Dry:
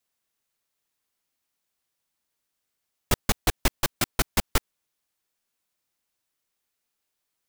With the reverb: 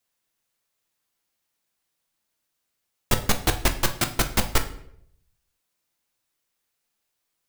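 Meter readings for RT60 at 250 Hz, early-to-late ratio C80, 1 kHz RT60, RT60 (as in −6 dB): 0.75 s, 15.5 dB, 0.65 s, 0.70 s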